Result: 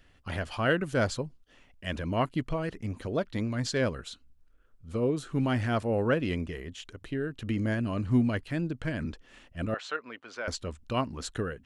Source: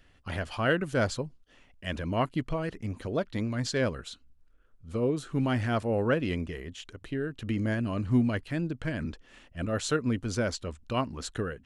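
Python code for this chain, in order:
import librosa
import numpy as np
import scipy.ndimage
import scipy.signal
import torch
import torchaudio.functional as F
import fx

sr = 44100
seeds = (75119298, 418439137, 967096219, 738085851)

y = fx.bandpass_edges(x, sr, low_hz=780.0, high_hz=2900.0, at=(9.74, 10.48))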